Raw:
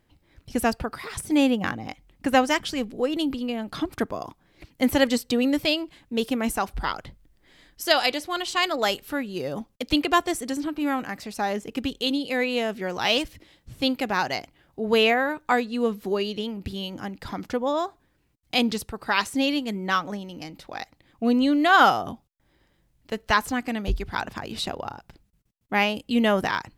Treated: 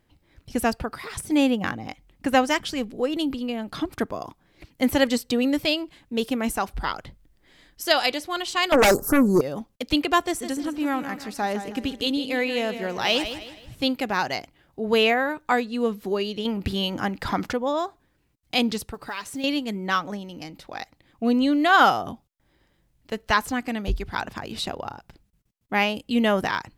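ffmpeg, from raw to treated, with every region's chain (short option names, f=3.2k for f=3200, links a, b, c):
-filter_complex "[0:a]asettb=1/sr,asplit=3[a][b][c];[a]atrim=end=8.724[d];[b]atrim=start=8.72:end=9.41,asetpts=PTS-STARTPTS,afade=t=in:d=0.004:c=qsin,afade=t=out:st=0.686:d=0.004:c=qsin,asuperstop=centerf=2800:order=8:qfactor=0.64,aeval=exprs='0.237*sin(PI/2*3.98*val(0)/0.237)':c=same[e];[c]atrim=start=9.406[f];[d][e]acrossfade=d=0.004:c1=hsin:c2=qsin[g];[g][f]acrossfade=d=0.004:c1=qsin:c2=hsin,asettb=1/sr,asplit=3[h][i][j];[h]atrim=end=10.214[k];[i]atrim=start=10.21:end=13.75,asetpts=PTS-STARTPTS,afade=t=in:d=0.004:c=qsin,afade=t=out:st=3.536:d=0.004:c=qsin,acompressor=mode=upward:threshold=-42dB:ratio=2.5:attack=3.2:release=140:knee=2.83:detection=peak,aecho=1:1:158|316|474|632:0.299|0.113|0.0431|0.0164,atrim=end_sample=156114[l];[j]atrim=start=13.746[m];[k][l]acrossfade=d=0.004:c1=hsin:c2=qsin[n];[n][m]acrossfade=d=0.004:c1=qsin:c2=hsin,asettb=1/sr,asplit=3[o][p][q];[o]atrim=end=16.454[r];[p]atrim=start=16.45:end=17.53,asetpts=PTS-STARTPTS,afade=t=in:d=0.004:c=qsin,afade=t=out:st=1.076:d=0.004:c=qsin,equalizer=f=1.3k:t=o:w=2.1:g=4.5,acontrast=39[s];[q]atrim=start=17.526[t];[r][s]acrossfade=d=0.004:c1=hsin:c2=qsin[u];[u][t]acrossfade=d=0.004:c1=qsin:c2=hsin,asettb=1/sr,asplit=3[v][w][x];[v]atrim=end=18.944[y];[w]atrim=start=18.94:end=19.44,asetpts=PTS-STARTPTS,afade=t=in:d=0.004:c=qsin,afade=t=out:st=0.496:d=0.004:c=qsin,aecho=1:1:6.9:0.33,atrim=end_sample=22050,acompressor=threshold=-33dB:ratio=2.5:attack=3.2:release=140:knee=1:detection=peak,acrusher=bits=7:mode=log:mix=0:aa=0.000001[z];[x]atrim=start=19.436[aa];[y][z]acrossfade=d=0.004:c1=hsin:c2=qsin[ab];[ab][aa]acrossfade=d=0.004:c1=qsin:c2=hsin"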